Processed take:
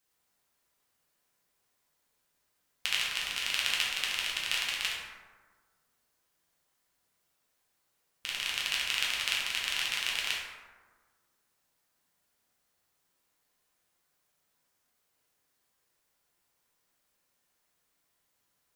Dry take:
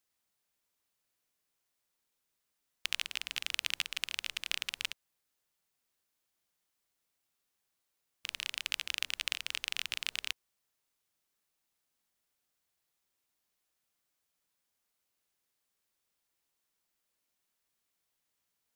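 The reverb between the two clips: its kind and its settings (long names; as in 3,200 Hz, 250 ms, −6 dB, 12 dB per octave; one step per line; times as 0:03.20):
dense smooth reverb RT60 1.5 s, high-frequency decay 0.4×, DRR −6 dB
level +1 dB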